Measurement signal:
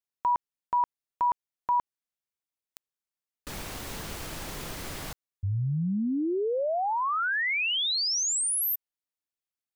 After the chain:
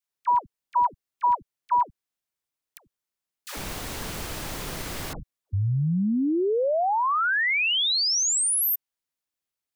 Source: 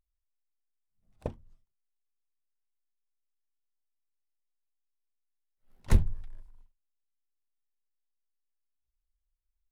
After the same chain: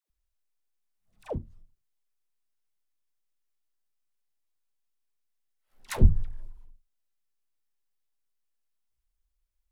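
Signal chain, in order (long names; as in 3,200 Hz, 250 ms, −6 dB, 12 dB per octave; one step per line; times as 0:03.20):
all-pass dispersion lows, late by 102 ms, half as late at 600 Hz
level +4 dB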